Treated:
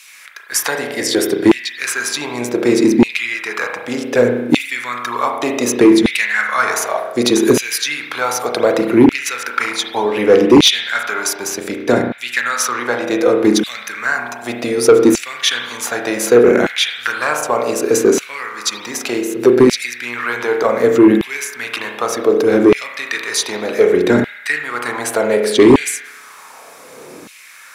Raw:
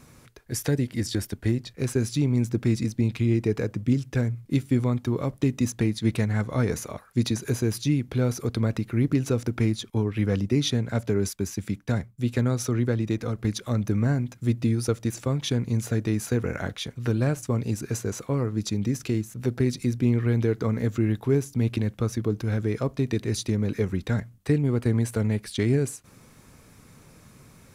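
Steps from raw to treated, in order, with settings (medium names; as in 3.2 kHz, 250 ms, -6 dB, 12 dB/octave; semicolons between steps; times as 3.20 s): spring tank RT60 1 s, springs 33 ms, chirp 70 ms, DRR 3 dB; LFO high-pass saw down 0.66 Hz 290–2700 Hz; sine folder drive 6 dB, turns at -7 dBFS; trim +5 dB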